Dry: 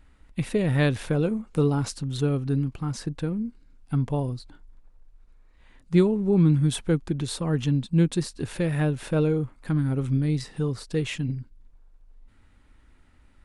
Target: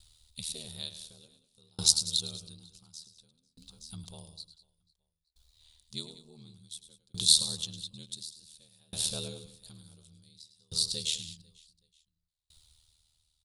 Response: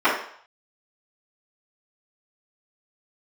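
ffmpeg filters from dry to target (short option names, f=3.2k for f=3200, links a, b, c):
-filter_complex "[0:a]equalizer=f=280:w=1.5:g=-15,aeval=exprs='val(0)*sin(2*PI*39*n/s)':c=same,aexciter=amount=4.1:drive=1.2:freq=3.8k,highshelf=f=2.6k:t=q:w=3:g=12.5,asplit=2[a][b];[b]aecho=0:1:105|192|495|872:0.299|0.224|0.119|0.106[c];[a][c]amix=inputs=2:normalize=0,aeval=exprs='val(0)*pow(10,-34*if(lt(mod(0.56*n/s,1),2*abs(0.56)/1000),1-mod(0.56*n/s,1)/(2*abs(0.56)/1000),(mod(0.56*n/s,1)-2*abs(0.56)/1000)/(1-2*abs(0.56)/1000))/20)':c=same,volume=-6dB"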